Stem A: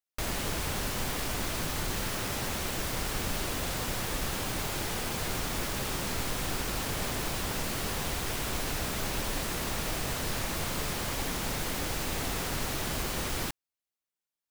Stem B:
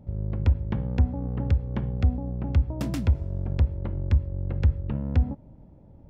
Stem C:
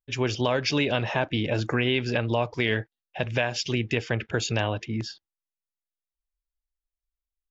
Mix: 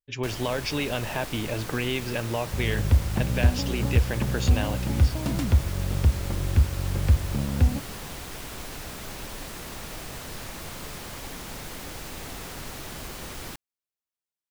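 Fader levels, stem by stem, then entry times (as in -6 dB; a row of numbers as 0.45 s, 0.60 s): -5.0 dB, +1.5 dB, -4.0 dB; 0.05 s, 2.45 s, 0.00 s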